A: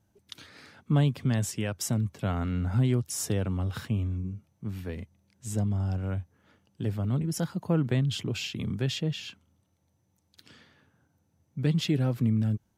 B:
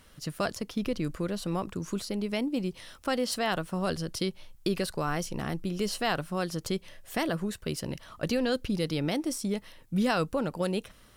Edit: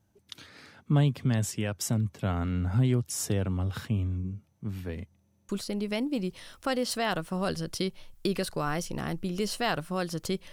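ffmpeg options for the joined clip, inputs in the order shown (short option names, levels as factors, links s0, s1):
-filter_complex "[0:a]apad=whole_dur=10.52,atrim=end=10.52,asplit=4[s0][s1][s2][s3];[s0]atrim=end=5.282[s4];[s1]atrim=start=5.208:end=5.282[s5];[s2]atrim=start=5.208:end=5.282[s6];[s3]atrim=start=5.208:end=5.282[s7];[1:a]atrim=start=1.898:end=6.93[s8];[s4][s5]acrossfade=d=0.004:c1=hsin:c2=hsin[s9];[s9][s6]acrossfade=d=0.004:c1=hsin:c2=hsin[s10];[s10][s7]acrossfade=d=0.004:c1=hsin:c2=hsin[s11];[s11][s8]acrossfade=d=0.004:c1=hsin:c2=hsin"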